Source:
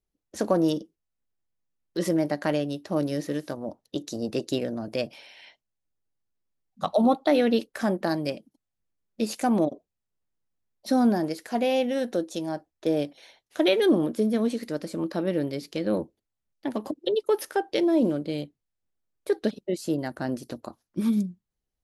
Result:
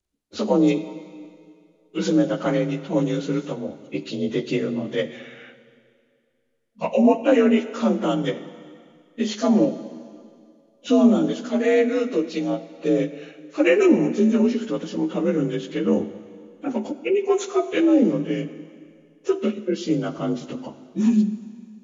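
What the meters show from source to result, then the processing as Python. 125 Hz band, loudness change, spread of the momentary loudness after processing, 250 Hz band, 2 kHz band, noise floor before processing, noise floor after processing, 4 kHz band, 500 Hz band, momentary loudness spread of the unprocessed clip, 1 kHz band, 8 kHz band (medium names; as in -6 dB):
+5.0 dB, +5.0 dB, 17 LU, +5.5 dB, +5.0 dB, -84 dBFS, -62 dBFS, +1.0 dB, +4.5 dB, 13 LU, +0.5 dB, +2.5 dB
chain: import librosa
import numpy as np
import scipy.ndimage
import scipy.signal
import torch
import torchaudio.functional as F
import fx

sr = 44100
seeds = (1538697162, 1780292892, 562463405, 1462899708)

y = fx.partial_stretch(x, sr, pct=87)
y = fx.rev_plate(y, sr, seeds[0], rt60_s=2.2, hf_ratio=0.95, predelay_ms=0, drr_db=11.5)
y = F.gain(torch.from_numpy(y), 6.0).numpy()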